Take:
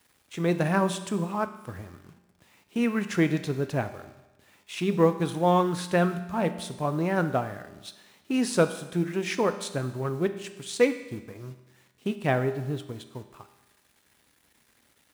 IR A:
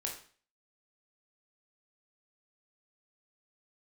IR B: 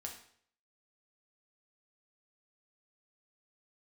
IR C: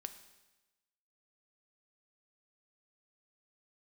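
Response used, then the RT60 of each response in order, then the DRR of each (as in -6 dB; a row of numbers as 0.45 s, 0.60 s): C; 0.45 s, 0.60 s, 1.1 s; -0.5 dB, 0.5 dB, 9.0 dB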